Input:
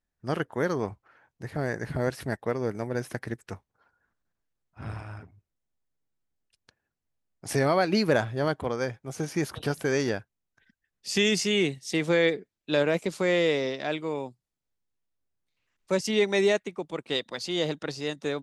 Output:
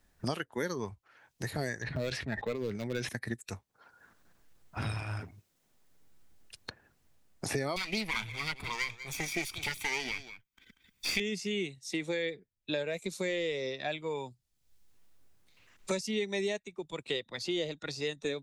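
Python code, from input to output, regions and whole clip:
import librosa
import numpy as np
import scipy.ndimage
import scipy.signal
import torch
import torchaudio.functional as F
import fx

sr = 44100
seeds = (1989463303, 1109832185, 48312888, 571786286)

y = fx.chain(x, sr, fx.lowpass(hz=3400.0, slope=12),
    fx.clip_hard(threshold_db=-23.5),
    fx.sustainer(db_per_s=63.0), at=(1.82, 3.09))
y = fx.chain(y, sr, fx.lower_of_two(delay_ms=0.87),
    fx.high_shelf_res(hz=1700.0, db=8.5, q=1.5),
    fx.echo_single(ms=188, db=-14.5), at=(7.76, 11.2))
y = fx.rider(y, sr, range_db=5, speed_s=2.0)
y = fx.noise_reduce_blind(y, sr, reduce_db=9)
y = fx.band_squash(y, sr, depth_pct=100)
y = F.gain(torch.from_numpy(y), -8.0).numpy()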